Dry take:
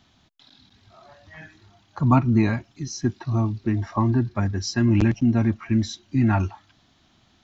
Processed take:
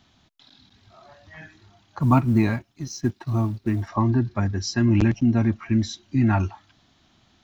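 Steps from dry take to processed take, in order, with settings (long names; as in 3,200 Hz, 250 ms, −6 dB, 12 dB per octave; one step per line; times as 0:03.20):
0:01.99–0:03.88: mu-law and A-law mismatch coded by A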